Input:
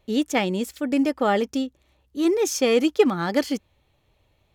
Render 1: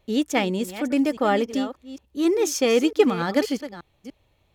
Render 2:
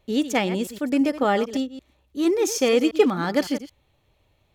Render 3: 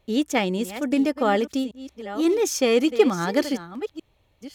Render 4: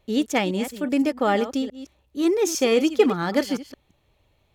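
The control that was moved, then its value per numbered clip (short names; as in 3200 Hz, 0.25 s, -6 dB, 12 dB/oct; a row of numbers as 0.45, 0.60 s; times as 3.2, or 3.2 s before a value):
reverse delay, time: 0.293, 0.112, 0.571, 0.17 s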